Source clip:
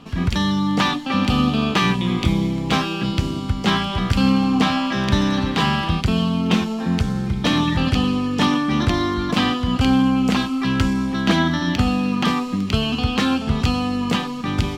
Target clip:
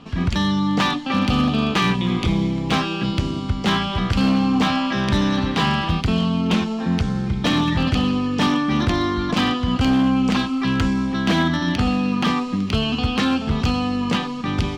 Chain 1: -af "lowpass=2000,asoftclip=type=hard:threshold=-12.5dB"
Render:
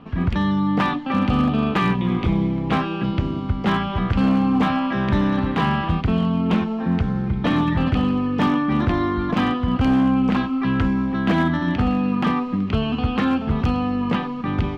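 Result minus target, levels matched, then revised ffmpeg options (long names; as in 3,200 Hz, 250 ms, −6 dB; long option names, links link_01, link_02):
8,000 Hz band −14.0 dB
-af "lowpass=6700,asoftclip=type=hard:threshold=-12.5dB"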